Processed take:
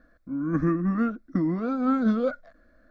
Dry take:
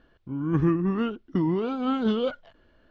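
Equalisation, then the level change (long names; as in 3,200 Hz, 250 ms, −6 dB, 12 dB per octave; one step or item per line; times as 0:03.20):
phaser with its sweep stopped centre 600 Hz, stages 8
+3.0 dB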